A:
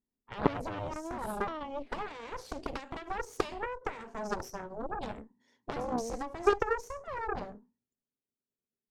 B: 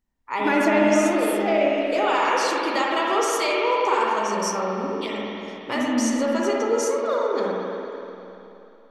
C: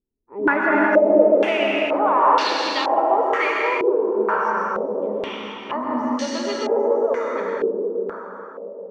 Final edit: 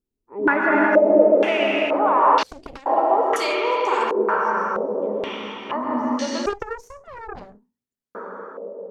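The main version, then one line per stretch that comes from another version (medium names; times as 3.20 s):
C
2.43–2.86 s: from A
3.36–4.11 s: from B
6.46–8.15 s: from A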